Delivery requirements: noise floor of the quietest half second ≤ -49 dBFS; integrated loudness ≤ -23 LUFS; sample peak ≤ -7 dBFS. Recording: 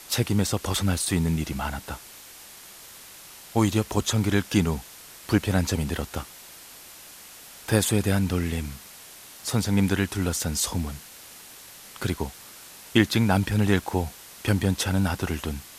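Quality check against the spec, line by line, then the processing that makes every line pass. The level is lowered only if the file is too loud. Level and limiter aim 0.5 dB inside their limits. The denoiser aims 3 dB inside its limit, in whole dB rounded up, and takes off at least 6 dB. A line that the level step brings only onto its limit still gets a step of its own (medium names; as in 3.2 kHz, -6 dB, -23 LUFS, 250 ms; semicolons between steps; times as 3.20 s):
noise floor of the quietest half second -46 dBFS: fail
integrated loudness -25.5 LUFS: pass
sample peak -4.5 dBFS: fail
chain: noise reduction 6 dB, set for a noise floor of -46 dBFS; peak limiter -7.5 dBFS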